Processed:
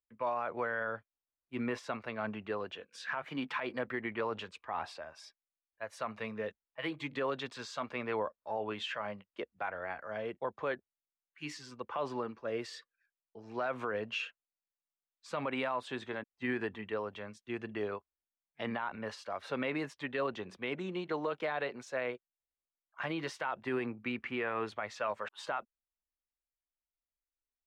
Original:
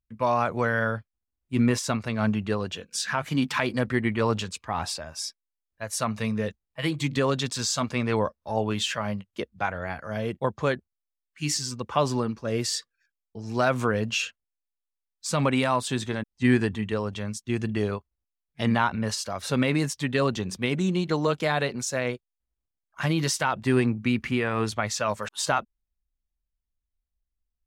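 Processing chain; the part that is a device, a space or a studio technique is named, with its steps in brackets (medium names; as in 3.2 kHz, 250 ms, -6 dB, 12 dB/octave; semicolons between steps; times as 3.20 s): DJ mixer with the lows and highs turned down (three-band isolator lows -16 dB, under 320 Hz, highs -22 dB, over 3.2 kHz; peak limiter -19.5 dBFS, peak gain reduction 10 dB); trim -5.5 dB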